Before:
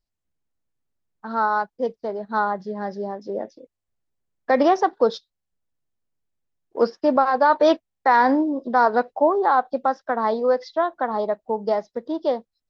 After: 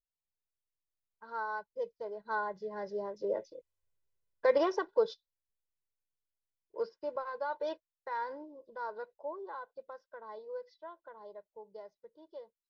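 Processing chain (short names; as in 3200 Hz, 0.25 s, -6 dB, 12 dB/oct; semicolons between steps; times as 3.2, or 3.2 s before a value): Doppler pass-by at 3.7, 6 m/s, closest 4.1 m; comb 2 ms, depth 89%; gain -7.5 dB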